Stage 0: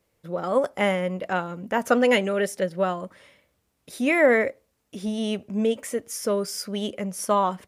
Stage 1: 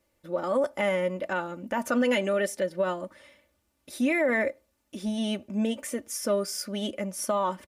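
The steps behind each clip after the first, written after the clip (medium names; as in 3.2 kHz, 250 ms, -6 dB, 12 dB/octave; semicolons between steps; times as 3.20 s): comb 3.4 ms, depth 62%; peak limiter -14.5 dBFS, peak gain reduction 10.5 dB; trim -2.5 dB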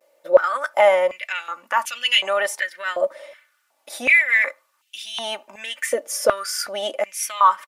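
vibrato 0.43 Hz 33 cents; step-sequenced high-pass 2.7 Hz 570–2900 Hz; trim +7 dB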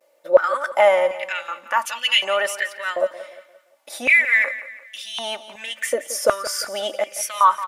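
feedback delay 174 ms, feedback 40%, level -14.5 dB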